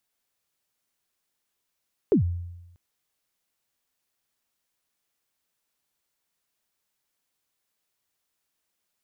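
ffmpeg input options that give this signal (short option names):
-f lavfi -i "aevalsrc='0.2*pow(10,-3*t/0.99)*sin(2*PI*(470*0.108/log(87/470)*(exp(log(87/470)*min(t,0.108)/0.108)-1)+87*max(t-0.108,0)))':d=0.64:s=44100"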